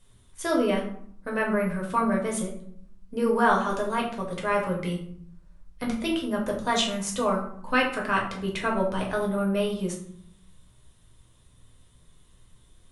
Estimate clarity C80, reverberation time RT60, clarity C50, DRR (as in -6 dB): 10.5 dB, 0.65 s, 6.5 dB, -2.0 dB